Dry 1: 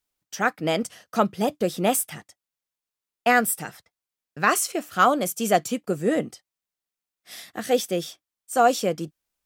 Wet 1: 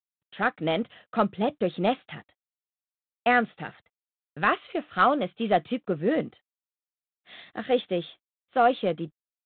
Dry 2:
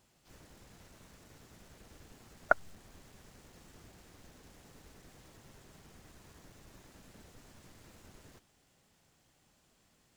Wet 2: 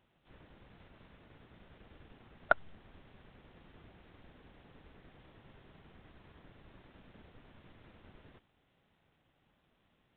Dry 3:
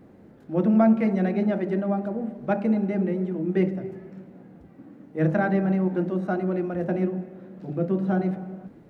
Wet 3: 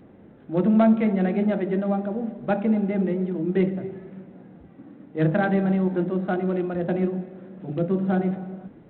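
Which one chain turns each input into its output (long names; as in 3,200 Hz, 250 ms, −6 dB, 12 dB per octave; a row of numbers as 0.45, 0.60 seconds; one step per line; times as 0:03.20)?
in parallel at −7 dB: soft clipping −14 dBFS
on the sum: G.726 32 kbit/s 8,000 Hz
normalise the peak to −9 dBFS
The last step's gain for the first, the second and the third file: −5.0, −3.5, −2.0 decibels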